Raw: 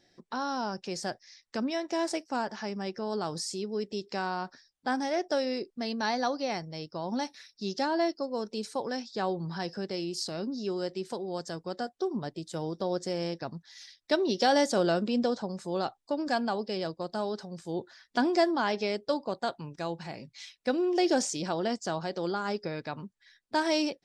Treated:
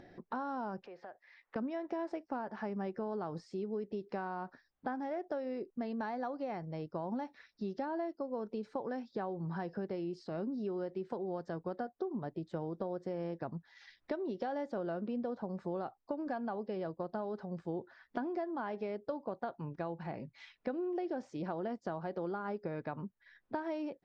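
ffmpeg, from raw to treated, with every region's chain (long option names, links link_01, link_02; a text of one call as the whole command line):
ffmpeg -i in.wav -filter_complex "[0:a]asettb=1/sr,asplit=3[link_01][link_02][link_03];[link_01]atrim=end=0.864[link_04];[link_02]atrim=start=0.86:end=1.56,asetpts=PTS-STARTPTS,afade=type=in:duration=0.004:curve=qsin,afade=type=out:start_time=0.696:duration=0.004:curve=qsin,lowpass=7900,acrossover=split=410 3500:gain=0.112 1 0.0891[link_05][link_06][link_07];[link_05][link_06][link_07]amix=inputs=3:normalize=0,acompressor=threshold=-50dB:ratio=3:attack=3.2:release=140:knee=1:detection=peak[link_08];[link_03]atrim=start=1.556[link_09];[link_04][link_08]acrossfade=duration=0.004:curve1=hsin:curve2=qsin[link_10];[link_10][link_09]acrossfade=duration=0.004:curve1=qsin:curve2=hsin,acompressor=threshold=-35dB:ratio=10,lowpass=1500,acompressor=mode=upward:threshold=-47dB:ratio=2.5,volume=1dB" out.wav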